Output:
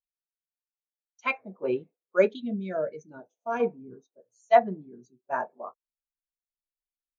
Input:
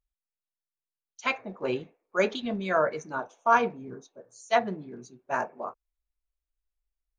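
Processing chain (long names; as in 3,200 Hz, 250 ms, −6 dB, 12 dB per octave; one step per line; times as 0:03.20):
0:02.27–0:03.60: parametric band 1,100 Hz −14.5 dB 1.3 octaves
every bin expanded away from the loudest bin 1.5 to 1
level +3 dB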